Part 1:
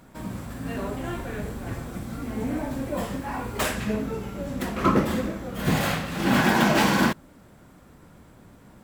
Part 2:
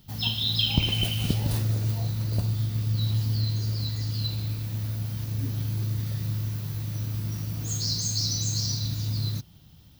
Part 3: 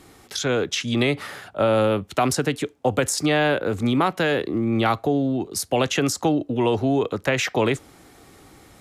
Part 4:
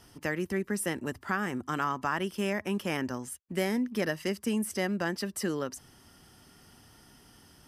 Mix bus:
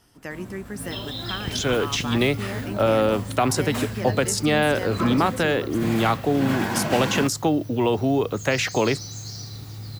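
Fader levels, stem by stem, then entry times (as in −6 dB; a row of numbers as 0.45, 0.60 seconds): −6.0, −8.0, −0.5, −3.0 decibels; 0.15, 0.70, 1.20, 0.00 seconds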